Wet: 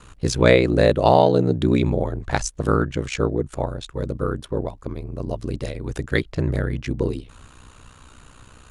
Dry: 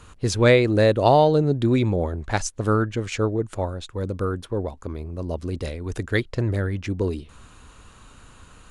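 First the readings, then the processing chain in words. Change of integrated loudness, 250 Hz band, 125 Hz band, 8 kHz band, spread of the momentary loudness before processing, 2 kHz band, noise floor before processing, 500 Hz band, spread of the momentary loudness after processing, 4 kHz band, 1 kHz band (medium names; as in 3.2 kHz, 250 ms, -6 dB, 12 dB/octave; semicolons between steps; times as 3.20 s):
+1.0 dB, +1.0 dB, 0.0 dB, +1.0 dB, 14 LU, +1.0 dB, -50 dBFS, +1.0 dB, 14 LU, +1.0 dB, +1.0 dB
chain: ring modulator 31 Hz; trim +4 dB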